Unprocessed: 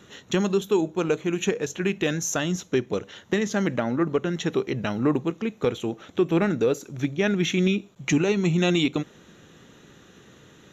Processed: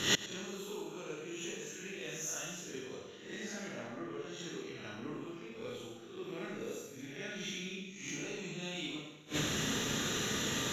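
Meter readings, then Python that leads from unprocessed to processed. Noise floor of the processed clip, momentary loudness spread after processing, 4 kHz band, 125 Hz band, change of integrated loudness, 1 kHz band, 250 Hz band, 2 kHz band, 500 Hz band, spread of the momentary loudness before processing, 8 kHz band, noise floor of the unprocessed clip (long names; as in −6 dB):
−51 dBFS, 11 LU, −4.0 dB, −17.0 dB, −14.5 dB, −12.5 dB, −17.5 dB, −9.0 dB, −17.5 dB, 6 LU, −4.0 dB, −53 dBFS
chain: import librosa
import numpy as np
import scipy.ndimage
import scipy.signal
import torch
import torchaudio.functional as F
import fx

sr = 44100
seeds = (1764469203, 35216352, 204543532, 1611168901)

p1 = fx.spec_swells(x, sr, rise_s=0.55)
p2 = fx.high_shelf(p1, sr, hz=2200.0, db=10.5)
p3 = 10.0 ** (-18.5 / 20.0) * np.tanh(p2 / 10.0 ** (-18.5 / 20.0))
p4 = p2 + (p3 * librosa.db_to_amplitude(-10.5))
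p5 = fx.rev_schroeder(p4, sr, rt60_s=0.94, comb_ms=26, drr_db=-3.0)
p6 = fx.gate_flip(p5, sr, shuts_db=-19.0, range_db=-32)
p7 = p6 + fx.echo_single(p6, sr, ms=109, db=-16.5, dry=0)
y = p7 * librosa.db_to_amplitude(4.0)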